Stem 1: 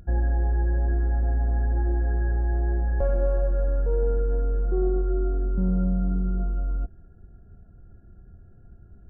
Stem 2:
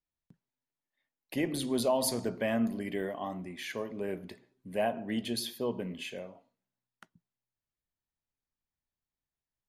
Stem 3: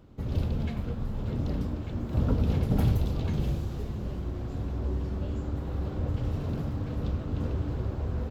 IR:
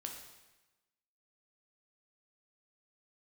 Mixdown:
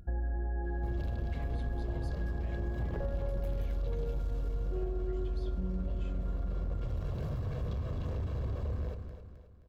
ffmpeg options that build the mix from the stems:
-filter_complex "[0:a]volume=-5dB,asplit=2[link_01][link_02];[link_02]volume=-4dB[link_03];[1:a]lowpass=5000,alimiter=level_in=5dB:limit=-24dB:level=0:latency=1,volume=-5dB,volume=-11.5dB[link_04];[2:a]aecho=1:1:1.8:0.72,asoftclip=type=tanh:threshold=-26.5dB,adelay=650,volume=-2dB,asplit=2[link_05][link_06];[link_06]volume=-11dB[link_07];[link_03][link_07]amix=inputs=2:normalize=0,aecho=0:1:263|526|789|1052|1315|1578:1|0.42|0.176|0.0741|0.0311|0.0131[link_08];[link_01][link_04][link_05][link_08]amix=inputs=4:normalize=0,acompressor=threshold=-31dB:ratio=5"

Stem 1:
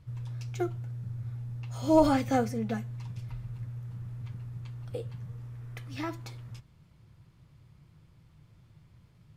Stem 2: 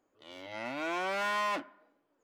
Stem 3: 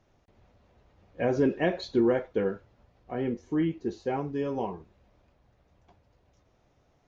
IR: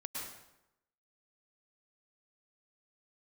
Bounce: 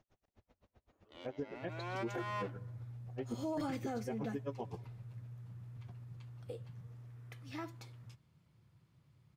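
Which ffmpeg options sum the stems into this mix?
-filter_complex "[0:a]highpass=90,adelay=1550,volume=-8.5dB[link_01];[1:a]highshelf=frequency=4000:gain=-8,adelay=900,volume=-2dB[link_02];[2:a]alimiter=limit=-18.5dB:level=0:latency=1:release=336,aeval=exprs='val(0)*pow(10,-40*(0.5-0.5*cos(2*PI*7.8*n/s))/20)':channel_layout=same,volume=-3dB,asplit=3[link_03][link_04][link_05];[link_04]volume=-21dB[link_06];[link_05]apad=whole_len=138065[link_07];[link_02][link_07]sidechaincompress=threshold=-47dB:ratio=3:attack=16:release=357[link_08];[3:a]atrim=start_sample=2205[link_09];[link_06][link_09]afir=irnorm=-1:irlink=0[link_10];[link_01][link_08][link_03][link_10]amix=inputs=4:normalize=0,alimiter=level_in=6.5dB:limit=-24dB:level=0:latency=1:release=25,volume=-6.5dB"

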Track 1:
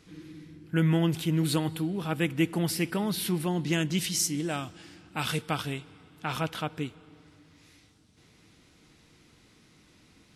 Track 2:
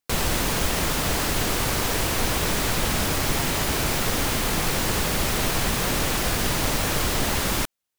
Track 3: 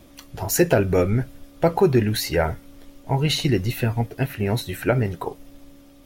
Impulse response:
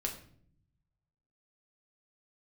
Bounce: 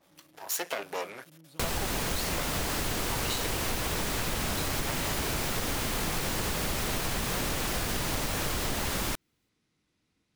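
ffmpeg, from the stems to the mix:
-filter_complex "[0:a]volume=-17.5dB[link_01];[1:a]adelay=1500,volume=-1.5dB[link_02];[2:a]aeval=exprs='max(val(0),0)':channel_layout=same,highpass=590,adynamicequalizer=threshold=0.00631:dfrequency=2100:dqfactor=0.7:tfrequency=2100:tqfactor=0.7:attack=5:release=100:ratio=0.375:range=3.5:mode=boostabove:tftype=highshelf,volume=-6dB,asplit=2[link_03][link_04];[link_04]apad=whole_len=456604[link_05];[link_01][link_05]sidechaincompress=threshold=-47dB:ratio=8:attack=16:release=826[link_06];[link_06][link_02][link_03]amix=inputs=3:normalize=0,acompressor=threshold=-27dB:ratio=6"

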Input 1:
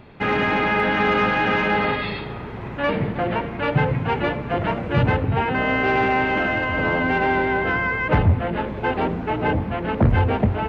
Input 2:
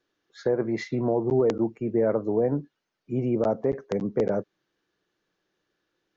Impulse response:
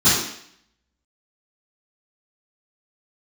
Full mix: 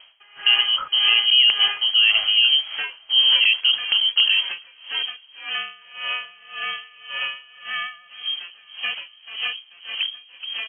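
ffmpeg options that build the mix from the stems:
-filter_complex "[0:a]acompressor=threshold=-25dB:ratio=6,aeval=exprs='val(0)*pow(10,-26*(0.5-0.5*cos(2*PI*1.8*n/s))/20)':channel_layout=same,volume=-2.5dB,asplit=2[link_01][link_02];[link_02]volume=-21.5dB[link_03];[1:a]acrusher=bits=6:mix=0:aa=0.5,asubboost=boost=5.5:cutoff=130,volume=2.5dB[link_04];[link_03]aecho=0:1:436|872|1308|1744|2180|2616:1|0.41|0.168|0.0689|0.0283|0.0116[link_05];[link_01][link_04][link_05]amix=inputs=3:normalize=0,dynaudnorm=framelen=160:gausssize=3:maxgain=5dB,lowpass=frequency=2800:width_type=q:width=0.5098,lowpass=frequency=2800:width_type=q:width=0.6013,lowpass=frequency=2800:width_type=q:width=0.9,lowpass=frequency=2800:width_type=q:width=2.563,afreqshift=-3300"

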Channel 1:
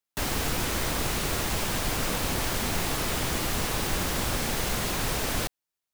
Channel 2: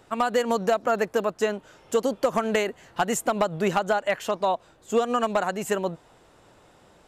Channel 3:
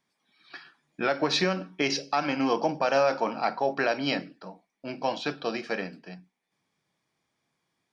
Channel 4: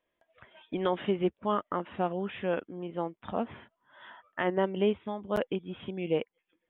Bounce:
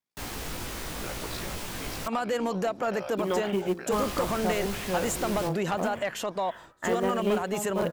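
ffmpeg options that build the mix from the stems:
ffmpeg -i stem1.wav -i stem2.wav -i stem3.wav -i stem4.wav -filter_complex "[0:a]flanger=delay=16:depth=4.1:speed=0.69,volume=-4.5dB,asplit=3[link_01][link_02][link_03];[link_01]atrim=end=2.08,asetpts=PTS-STARTPTS,afade=type=out:start_time=2.076:duration=0.004:curve=hsin[link_04];[link_02]atrim=start=2.08:end=3.92,asetpts=PTS-STARTPTS,volume=0[link_05];[link_03]atrim=start=3.92,asetpts=PTS-STARTPTS,afade=type=in:duration=0.004:curve=hsin[link_06];[link_04][link_05][link_06]concat=n=3:v=0:a=1[link_07];[1:a]agate=range=-15dB:threshold=-49dB:ratio=16:detection=peak,alimiter=limit=-21.5dB:level=0:latency=1:release=50,adelay=1950,volume=2dB[link_08];[2:a]aeval=exprs='val(0)*sin(2*PI*28*n/s)':channel_layout=same,volume=-12.5dB[link_09];[3:a]bandreject=frequency=57.75:width_type=h:width=4,bandreject=frequency=115.5:width_type=h:width=4,bandreject=frequency=173.25:width_type=h:width=4,bandreject=frequency=231:width_type=h:width=4,bandreject=frequency=288.75:width_type=h:width=4,bandreject=frequency=346.5:width_type=h:width=4,bandreject=frequency=404.25:width_type=h:width=4,bandreject=frequency=462:width_type=h:width=4,bandreject=frequency=519.75:width_type=h:width=4,bandreject=frequency=577.5:width_type=h:width=4,bandreject=frequency=635.25:width_type=h:width=4,bandreject=frequency=693:width_type=h:width=4,bandreject=frequency=750.75:width_type=h:width=4,bandreject=frequency=808.5:width_type=h:width=4,bandreject=frequency=866.25:width_type=h:width=4,bandreject=frequency=924:width_type=h:width=4,bandreject=frequency=981.75:width_type=h:width=4,bandreject=frequency=1039.5:width_type=h:width=4,bandreject=frequency=1097.25:width_type=h:width=4,bandreject=frequency=1155:width_type=h:width=4,bandreject=frequency=1212.75:width_type=h:width=4,bandreject=frequency=1270.5:width_type=h:width=4,bandreject=frequency=1328.25:width_type=h:width=4,bandreject=frequency=1386:width_type=h:width=4,bandreject=frequency=1443.75:width_type=h:width=4,bandreject=frequency=1501.5:width_type=h:width=4,bandreject=frequency=1559.25:width_type=h:width=4,bandreject=frequency=1617:width_type=h:width=4,bandreject=frequency=1674.75:width_type=h:width=4,bandreject=frequency=1732.5:width_type=h:width=4,bandreject=frequency=1790.25:width_type=h:width=4,bandreject=frequency=1848:width_type=h:width=4,bandreject=frequency=1905.75:width_type=h:width=4,acrusher=bits=5:mode=log:mix=0:aa=0.000001,adelay=2450,volume=2dB[link_10];[link_07][link_08][link_09][link_10]amix=inputs=4:normalize=0,asoftclip=type=tanh:threshold=-18dB" out.wav

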